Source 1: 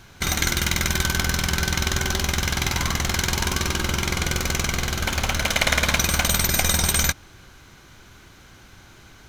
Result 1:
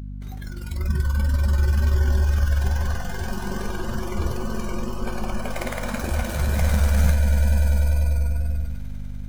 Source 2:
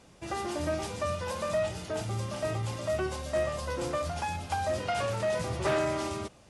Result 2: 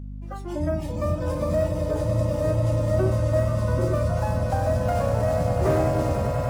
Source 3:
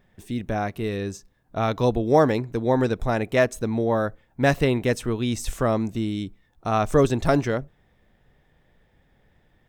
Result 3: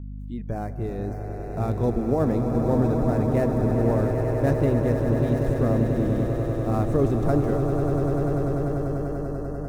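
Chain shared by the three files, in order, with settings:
gap after every zero crossing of 0.078 ms
on a send: echo that builds up and dies away 98 ms, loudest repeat 8, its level −10 dB
on the sum: compressor whose output falls as the input rises −15 dBFS, ratio −0.5
tilt shelving filter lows +6.5 dB, about 740 Hz
noise reduction from a noise print of the clip's start 17 dB
mains hum 50 Hz, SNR 12 dB
dynamic equaliser 3,100 Hz, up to −7 dB, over −51 dBFS, Q 1.5
tape wow and flutter 21 cents
loudness normalisation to −24 LKFS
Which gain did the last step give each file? −5.0, +3.0, −6.5 decibels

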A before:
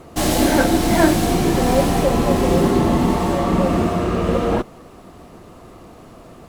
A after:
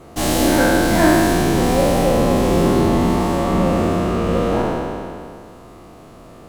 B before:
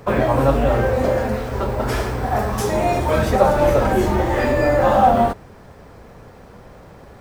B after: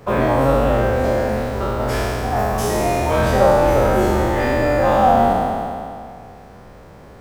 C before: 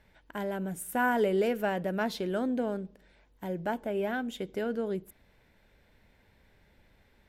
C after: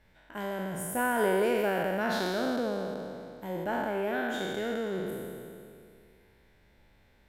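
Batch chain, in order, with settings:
peak hold with a decay on every bin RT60 2.39 s
level −3 dB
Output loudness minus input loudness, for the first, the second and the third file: +1.0, +0.5, +0.5 LU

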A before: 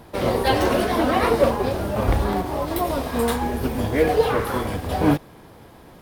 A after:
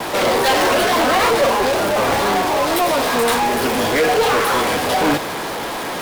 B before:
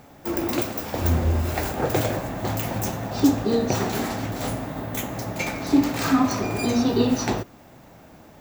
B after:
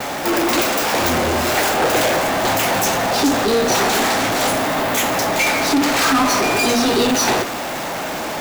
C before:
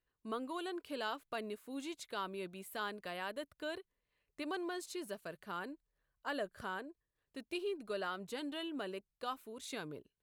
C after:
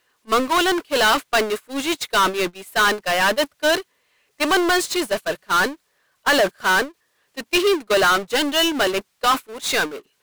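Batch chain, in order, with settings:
meter weighting curve A
power curve on the samples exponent 0.35
noise gate −34 dBFS, range −33 dB
normalise the peak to −9 dBFS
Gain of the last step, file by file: −1.5, +1.0, +16.0 decibels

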